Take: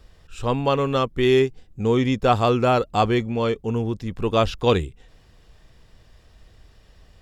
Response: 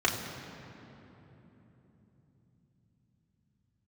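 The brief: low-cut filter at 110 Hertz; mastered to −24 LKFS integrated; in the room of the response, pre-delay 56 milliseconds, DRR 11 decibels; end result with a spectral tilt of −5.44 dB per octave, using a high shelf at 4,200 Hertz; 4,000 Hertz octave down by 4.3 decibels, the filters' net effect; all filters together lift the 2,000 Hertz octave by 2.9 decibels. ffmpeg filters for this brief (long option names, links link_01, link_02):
-filter_complex "[0:a]highpass=110,equalizer=frequency=2000:width_type=o:gain=7,equalizer=frequency=4000:width_type=o:gain=-6,highshelf=frequency=4200:gain=-5.5,asplit=2[link_01][link_02];[1:a]atrim=start_sample=2205,adelay=56[link_03];[link_02][link_03]afir=irnorm=-1:irlink=0,volume=-23dB[link_04];[link_01][link_04]amix=inputs=2:normalize=0,volume=-3dB"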